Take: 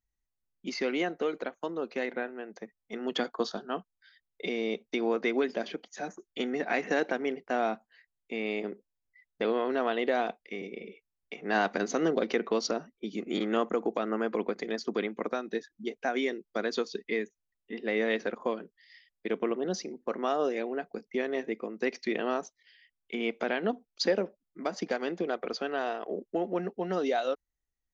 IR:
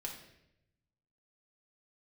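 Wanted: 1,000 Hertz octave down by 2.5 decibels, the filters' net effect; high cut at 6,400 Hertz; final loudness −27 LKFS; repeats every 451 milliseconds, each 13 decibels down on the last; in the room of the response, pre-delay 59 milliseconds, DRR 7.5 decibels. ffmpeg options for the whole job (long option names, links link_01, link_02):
-filter_complex "[0:a]lowpass=6400,equalizer=frequency=1000:width_type=o:gain=-4,aecho=1:1:451|902|1353:0.224|0.0493|0.0108,asplit=2[link_01][link_02];[1:a]atrim=start_sample=2205,adelay=59[link_03];[link_02][link_03]afir=irnorm=-1:irlink=0,volume=-6dB[link_04];[link_01][link_04]amix=inputs=2:normalize=0,volume=5dB"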